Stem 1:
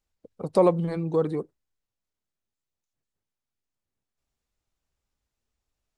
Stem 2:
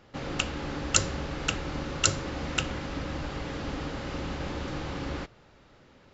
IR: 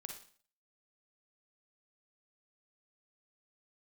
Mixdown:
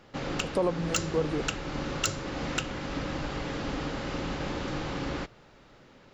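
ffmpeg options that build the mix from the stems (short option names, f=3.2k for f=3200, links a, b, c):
-filter_complex "[0:a]volume=-1.5dB[a];[1:a]asoftclip=type=tanh:threshold=-11.5dB,volume=2dB[b];[a][b]amix=inputs=2:normalize=0,equalizer=f=76:w=2.8:g=-9,alimiter=limit=-15.5dB:level=0:latency=1:release=376"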